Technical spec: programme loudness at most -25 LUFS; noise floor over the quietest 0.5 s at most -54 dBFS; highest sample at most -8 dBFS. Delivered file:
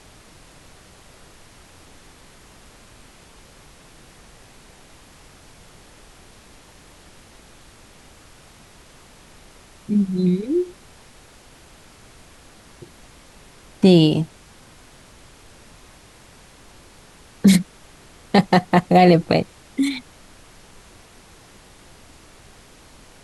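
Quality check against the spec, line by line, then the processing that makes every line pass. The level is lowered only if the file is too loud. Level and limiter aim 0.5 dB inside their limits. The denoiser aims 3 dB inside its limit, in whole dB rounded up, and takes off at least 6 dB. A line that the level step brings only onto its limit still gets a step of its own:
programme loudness -18.0 LUFS: fail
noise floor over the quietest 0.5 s -48 dBFS: fail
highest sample -4.0 dBFS: fail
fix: trim -7.5 dB

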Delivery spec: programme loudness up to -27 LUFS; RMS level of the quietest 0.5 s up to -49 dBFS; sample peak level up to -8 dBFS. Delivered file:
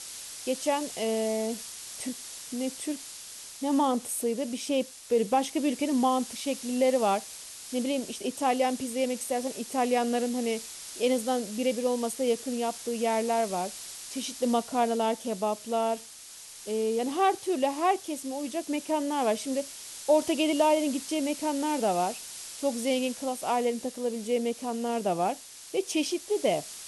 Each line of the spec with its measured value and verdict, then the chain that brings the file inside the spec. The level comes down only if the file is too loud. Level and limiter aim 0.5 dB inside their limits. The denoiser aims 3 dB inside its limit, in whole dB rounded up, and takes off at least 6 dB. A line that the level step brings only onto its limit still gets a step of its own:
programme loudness -29.0 LUFS: pass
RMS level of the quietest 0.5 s -47 dBFS: fail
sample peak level -12.0 dBFS: pass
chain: noise reduction 6 dB, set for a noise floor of -47 dBFS

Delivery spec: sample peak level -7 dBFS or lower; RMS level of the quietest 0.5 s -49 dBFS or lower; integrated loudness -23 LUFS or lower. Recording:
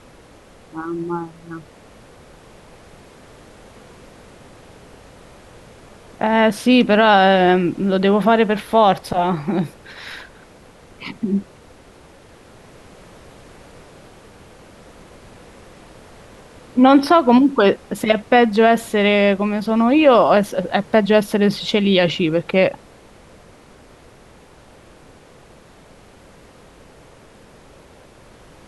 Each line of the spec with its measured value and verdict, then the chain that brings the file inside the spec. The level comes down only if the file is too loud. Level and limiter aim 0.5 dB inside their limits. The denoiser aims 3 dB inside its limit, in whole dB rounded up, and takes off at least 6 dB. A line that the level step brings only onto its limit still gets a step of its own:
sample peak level -2.5 dBFS: fail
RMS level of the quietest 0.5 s -46 dBFS: fail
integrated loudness -16.0 LUFS: fail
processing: trim -7.5 dB

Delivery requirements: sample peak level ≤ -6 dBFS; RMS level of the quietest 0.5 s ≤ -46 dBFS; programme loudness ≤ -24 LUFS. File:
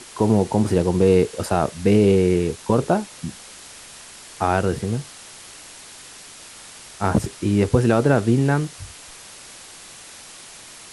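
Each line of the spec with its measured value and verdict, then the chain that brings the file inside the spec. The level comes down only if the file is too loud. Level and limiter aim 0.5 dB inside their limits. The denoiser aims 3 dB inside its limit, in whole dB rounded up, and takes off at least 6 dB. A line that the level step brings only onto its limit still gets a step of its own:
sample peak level -5.0 dBFS: fail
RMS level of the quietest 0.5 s -42 dBFS: fail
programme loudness -20.0 LUFS: fail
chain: trim -4.5 dB

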